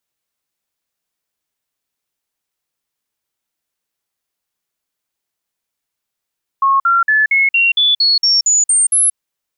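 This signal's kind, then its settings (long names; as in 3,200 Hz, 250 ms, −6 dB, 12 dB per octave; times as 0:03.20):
stepped sweep 1,090 Hz up, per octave 3, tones 11, 0.18 s, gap 0.05 s −9 dBFS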